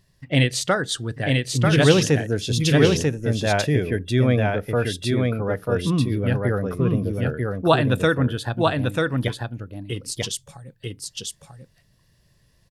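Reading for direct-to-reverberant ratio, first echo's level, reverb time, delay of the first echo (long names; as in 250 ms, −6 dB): no reverb audible, −3.0 dB, no reverb audible, 941 ms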